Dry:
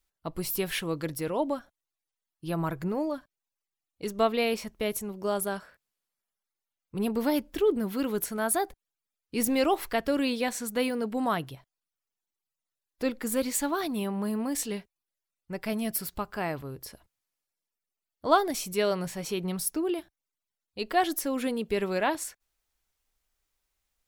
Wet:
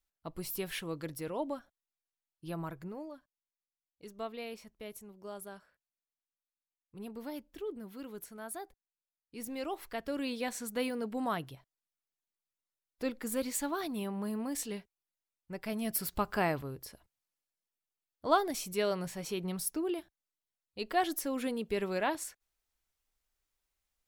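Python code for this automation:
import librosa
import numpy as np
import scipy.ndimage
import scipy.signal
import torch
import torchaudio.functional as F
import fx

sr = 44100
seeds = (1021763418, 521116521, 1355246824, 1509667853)

y = fx.gain(x, sr, db=fx.line((2.46, -7.5), (3.15, -15.5), (9.39, -15.5), (10.55, -6.0), (15.73, -6.0), (16.33, 3.0), (16.88, -5.0)))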